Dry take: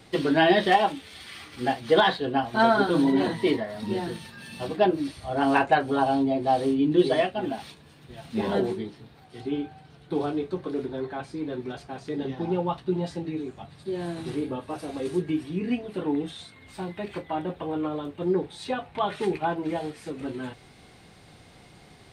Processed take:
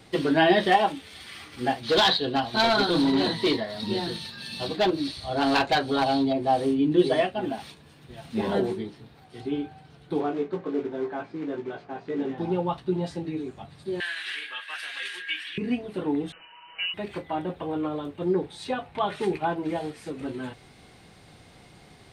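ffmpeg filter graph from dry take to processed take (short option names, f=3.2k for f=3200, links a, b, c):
-filter_complex "[0:a]asettb=1/sr,asplit=3[a][b][c];[a]atrim=end=1.834[d];[b]atrim=start=1.83:end=6.33,asetpts=PTS-STARTPTS,afade=t=in:d=0.004:c=qsin,afade=t=out:st=4.496:d=0.004:c=qsin,asoftclip=type=hard:threshold=-18dB,equalizer=f=4.1k:w=2:g=13.5[e];[c]atrim=start=6.326[f];[d][e]acrossfade=d=0.004:c1=hsin:c2=qsin[g];[g][f]acrossfade=d=0.004:c1=qsin:c2=hsin,asettb=1/sr,asplit=3[h][i][j];[h]atrim=end=10.204[k];[i]atrim=start=10.2:end=12.38,asetpts=PTS-STARTPTS,afade=t=in:d=0.004:c=qsin,afade=t=out:st=2.176:d=0.004:c=qsin,acrusher=bits=4:mode=log:mix=0:aa=0.000001,highpass=170,lowpass=2.3k,asplit=2[l][m];[m]adelay=18,volume=-5dB[n];[l][n]amix=inputs=2:normalize=0,atrim=end_sample=96138[o];[j]atrim=start=12.376[p];[k][o]acrossfade=d=0.004:c1=hsin:c2=qsin[q];[q][p]acrossfade=d=0.004:c1=qsin:c2=hsin,asettb=1/sr,asplit=3[r][s][t];[r]atrim=end=14.004[u];[s]atrim=start=14:end=15.58,asetpts=PTS-STARTPTS,afade=t=in:d=0.004:c=qsin,afade=t=out:st=1.576:d=0.004:c=qsin,highpass=f=1.7k:t=q:w=6.6,equalizer=f=3k:t=o:w=0.86:g=13.5[v];[t]atrim=start=15.576[w];[u][v]acrossfade=d=0.004:c1=hsin:c2=qsin[x];[x][w]acrossfade=d=0.004:c1=qsin:c2=hsin,asettb=1/sr,asplit=3[y][z][aa];[y]atrim=end=16.324[ab];[z]atrim=start=16.32:end=16.94,asetpts=PTS-STARTPTS,afade=t=in:d=0.004:c=qsin,afade=t=out:st=0.616:d=0.004:c=qsin,aecho=1:1:6.1:0.75,atrim=end_sample=27342,lowpass=f=2.6k:t=q:w=0.5098,lowpass=f=2.6k:t=q:w=0.6013,lowpass=f=2.6k:t=q:w=0.9,lowpass=f=2.6k:t=q:w=2.563,afreqshift=-3100[ac];[aa]atrim=start=16.936[ad];[ab][ac]acrossfade=d=0.004:c1=hsin:c2=qsin[ae];[ae][ad]acrossfade=d=0.004:c1=qsin:c2=hsin"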